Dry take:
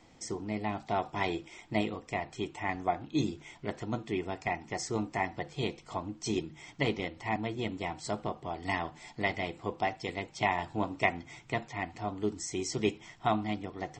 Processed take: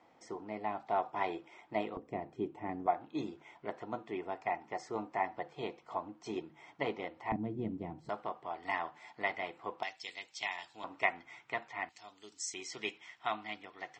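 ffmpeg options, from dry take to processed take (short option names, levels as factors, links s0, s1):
-af "asetnsamples=n=441:p=0,asendcmd='1.97 bandpass f 330;2.86 bandpass f 860;7.32 bandpass f 210;8.09 bandpass f 1200;9.83 bandpass f 4400;10.84 bandpass f 1400;11.89 bandpass f 5900;12.54 bandpass f 2100',bandpass=f=870:t=q:w=0.88:csg=0"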